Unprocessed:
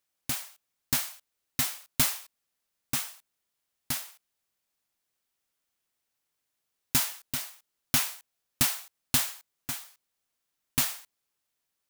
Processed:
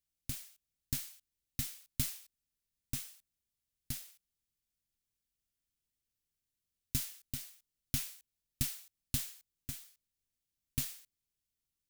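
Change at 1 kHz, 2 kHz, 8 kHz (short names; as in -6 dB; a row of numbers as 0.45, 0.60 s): -22.0, -16.0, -11.0 dB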